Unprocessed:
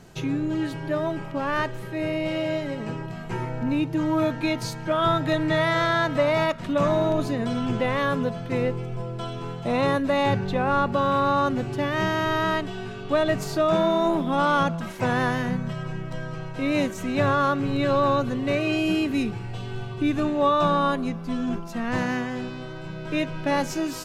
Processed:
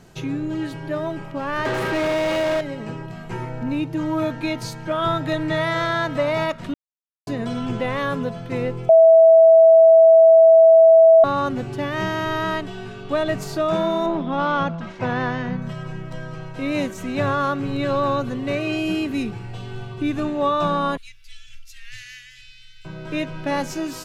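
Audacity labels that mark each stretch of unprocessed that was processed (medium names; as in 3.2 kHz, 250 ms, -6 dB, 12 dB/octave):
1.650000	2.610000	overdrive pedal drive 36 dB, tone 1.7 kHz, clips at -14.5 dBFS
6.740000	7.270000	mute
8.890000	11.240000	bleep 653 Hz -7 dBFS
14.060000	15.620000	Bessel low-pass 4.1 kHz, order 4
20.970000	22.850000	inverse Chebyshev band-stop 170–990 Hz, stop band 50 dB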